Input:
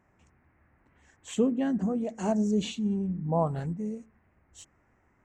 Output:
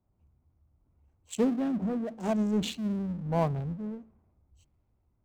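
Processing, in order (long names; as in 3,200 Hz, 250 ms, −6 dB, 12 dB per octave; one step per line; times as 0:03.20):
adaptive Wiener filter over 25 samples
power curve on the samples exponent 0.7
multiband upward and downward expander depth 70%
level −5 dB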